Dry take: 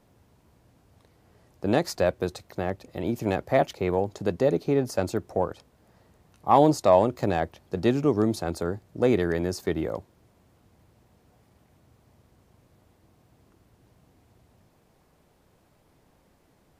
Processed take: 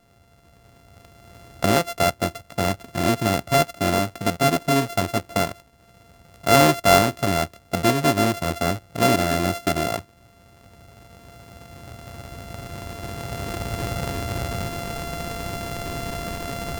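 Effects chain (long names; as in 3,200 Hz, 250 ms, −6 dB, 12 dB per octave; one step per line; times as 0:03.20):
samples sorted by size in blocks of 64 samples
camcorder AGC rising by 7.1 dB per second
level +3 dB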